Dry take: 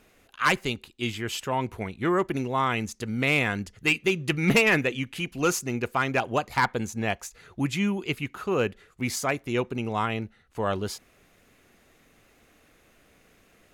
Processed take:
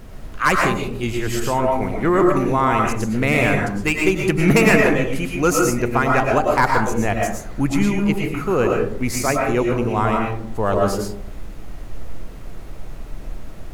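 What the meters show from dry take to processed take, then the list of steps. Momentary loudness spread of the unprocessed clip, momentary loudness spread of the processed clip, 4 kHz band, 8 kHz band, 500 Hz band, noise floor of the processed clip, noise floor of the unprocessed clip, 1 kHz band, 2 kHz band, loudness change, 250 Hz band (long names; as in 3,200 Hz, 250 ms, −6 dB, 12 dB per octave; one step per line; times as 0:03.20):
9 LU, 10 LU, +1.0 dB, +7.0 dB, +10.0 dB, −33 dBFS, −61 dBFS, +9.0 dB, +5.5 dB, +8.0 dB, +9.5 dB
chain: parametric band 3,300 Hz −10 dB 0.93 octaves
background noise brown −42 dBFS
comb and all-pass reverb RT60 0.64 s, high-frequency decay 0.35×, pre-delay 75 ms, DRR 0 dB
level +6.5 dB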